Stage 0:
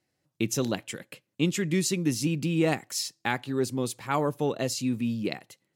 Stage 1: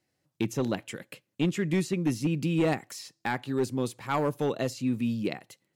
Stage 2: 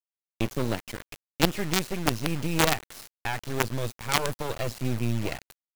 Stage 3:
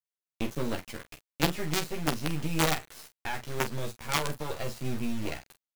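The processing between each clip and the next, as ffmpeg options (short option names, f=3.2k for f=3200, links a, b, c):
-filter_complex "[0:a]acrossover=split=2500[a][b];[a]volume=19.5dB,asoftclip=hard,volume=-19.5dB[c];[b]acompressor=threshold=-42dB:ratio=6[d];[c][d]amix=inputs=2:normalize=0"
-filter_complex "[0:a]acrossover=split=4500[a][b];[b]acompressor=threshold=-48dB:ratio=4:attack=1:release=60[c];[a][c]amix=inputs=2:normalize=0,asubboost=boost=11.5:cutoff=71,acrusher=bits=4:dc=4:mix=0:aa=0.000001,volume=5dB"
-af "aecho=1:1:13|46:0.708|0.316,volume=-5.5dB"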